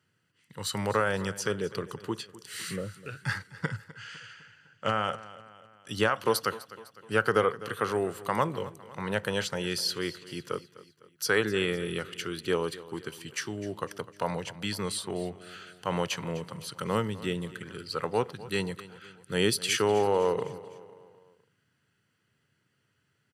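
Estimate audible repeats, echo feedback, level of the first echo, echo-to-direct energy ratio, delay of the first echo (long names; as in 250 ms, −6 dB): 3, 50%, −17.5 dB, −16.5 dB, 253 ms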